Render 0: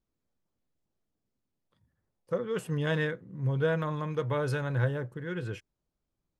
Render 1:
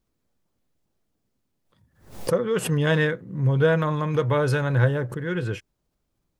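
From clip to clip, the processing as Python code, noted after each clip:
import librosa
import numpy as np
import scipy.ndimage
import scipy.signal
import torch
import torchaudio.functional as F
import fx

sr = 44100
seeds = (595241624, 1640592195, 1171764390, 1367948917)

y = fx.pre_swell(x, sr, db_per_s=120.0)
y = y * librosa.db_to_amplitude(8.0)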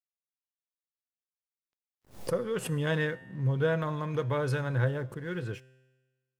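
y = np.sign(x) * np.maximum(np.abs(x) - 10.0 ** (-50.5 / 20.0), 0.0)
y = fx.comb_fb(y, sr, f0_hz=130.0, decay_s=1.3, harmonics='all', damping=0.0, mix_pct=50)
y = y * librosa.db_to_amplitude(-2.0)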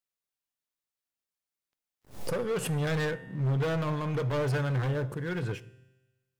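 y = np.clip(10.0 ** (30.5 / 20.0) * x, -1.0, 1.0) / 10.0 ** (30.5 / 20.0)
y = fx.room_shoebox(y, sr, seeds[0], volume_m3=800.0, walls='furnished', distance_m=0.36)
y = y * librosa.db_to_amplitude(3.5)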